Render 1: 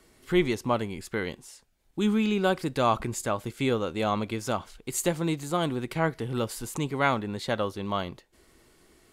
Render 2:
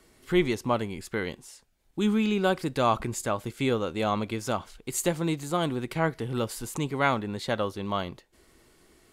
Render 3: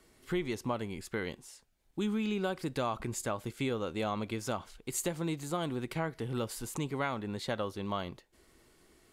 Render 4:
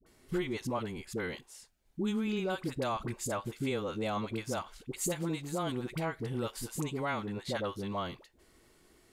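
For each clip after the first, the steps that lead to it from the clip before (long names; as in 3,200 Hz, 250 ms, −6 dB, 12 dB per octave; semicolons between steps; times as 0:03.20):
no processing that can be heard
downward compressor 6 to 1, threshold −25 dBFS, peak gain reduction 8 dB; level −4 dB
all-pass dispersion highs, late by 63 ms, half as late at 690 Hz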